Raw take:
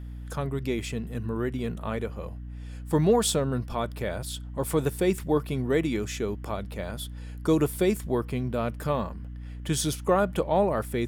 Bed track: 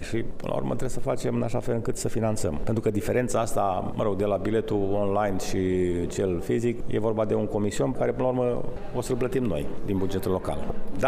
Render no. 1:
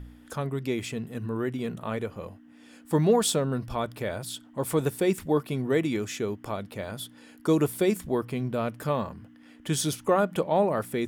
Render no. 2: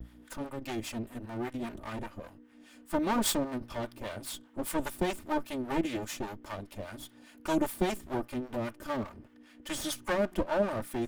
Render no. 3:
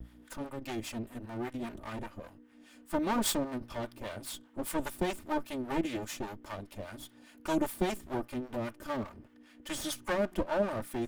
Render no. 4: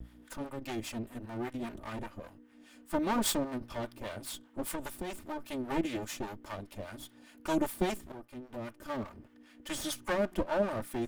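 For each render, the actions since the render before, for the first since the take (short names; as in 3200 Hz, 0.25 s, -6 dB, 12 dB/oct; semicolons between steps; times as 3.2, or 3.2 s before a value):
de-hum 60 Hz, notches 3
minimum comb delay 3.3 ms; harmonic tremolo 5 Hz, depth 70%, crossover 730 Hz
gain -1.5 dB
4.75–5.51 compressor 5:1, threshold -34 dBFS; 8.12–9.19 fade in, from -14.5 dB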